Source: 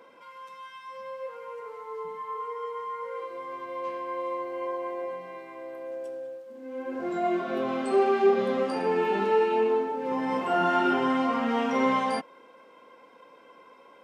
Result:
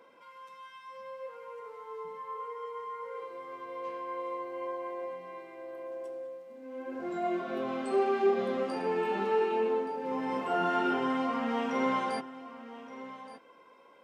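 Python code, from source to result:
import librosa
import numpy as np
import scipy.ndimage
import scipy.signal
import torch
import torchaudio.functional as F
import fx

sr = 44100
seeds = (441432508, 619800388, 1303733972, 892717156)

y = x + 10.0 ** (-15.0 / 20.0) * np.pad(x, (int(1173 * sr / 1000.0), 0))[:len(x)]
y = y * 10.0 ** (-5.0 / 20.0)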